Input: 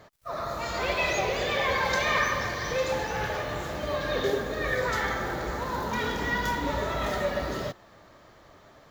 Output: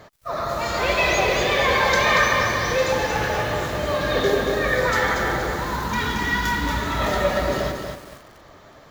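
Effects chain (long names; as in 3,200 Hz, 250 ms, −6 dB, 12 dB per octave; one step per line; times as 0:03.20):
0:05.56–0:06.99: parametric band 540 Hz −12.5 dB 0.83 octaves
feedback echo at a low word length 233 ms, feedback 35%, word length 8 bits, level −5 dB
level +6.5 dB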